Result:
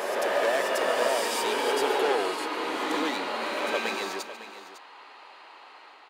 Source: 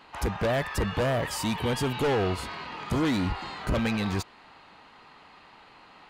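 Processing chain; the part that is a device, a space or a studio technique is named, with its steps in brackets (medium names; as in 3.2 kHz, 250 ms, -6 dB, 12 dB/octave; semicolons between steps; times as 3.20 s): multi-tap echo 143/554 ms -16.5/-14 dB; ghost voice (reverse; reverberation RT60 2.7 s, pre-delay 83 ms, DRR -2 dB; reverse; high-pass 370 Hz 24 dB/octave)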